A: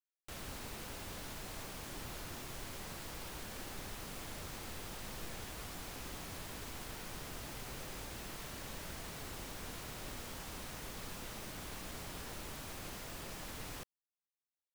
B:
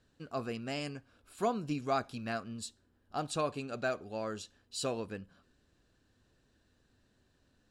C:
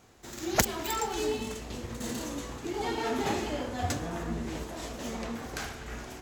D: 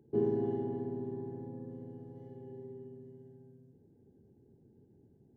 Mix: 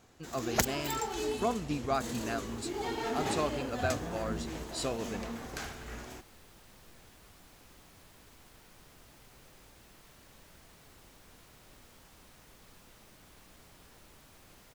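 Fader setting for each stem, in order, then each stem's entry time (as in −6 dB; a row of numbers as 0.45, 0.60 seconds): −11.5, +0.5, −3.5, −15.5 decibels; 1.65, 0.00, 0.00, 2.10 seconds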